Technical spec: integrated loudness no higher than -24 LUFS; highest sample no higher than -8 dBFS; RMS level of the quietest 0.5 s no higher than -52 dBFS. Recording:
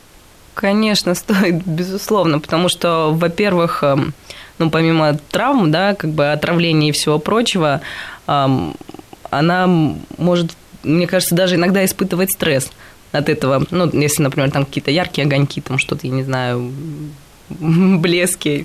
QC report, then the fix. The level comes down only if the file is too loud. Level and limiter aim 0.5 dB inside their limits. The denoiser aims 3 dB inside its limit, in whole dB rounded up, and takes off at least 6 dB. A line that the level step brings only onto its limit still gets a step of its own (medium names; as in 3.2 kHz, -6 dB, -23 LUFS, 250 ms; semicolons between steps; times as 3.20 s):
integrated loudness -16.0 LUFS: fail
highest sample -5.5 dBFS: fail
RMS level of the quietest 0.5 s -44 dBFS: fail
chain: trim -8.5 dB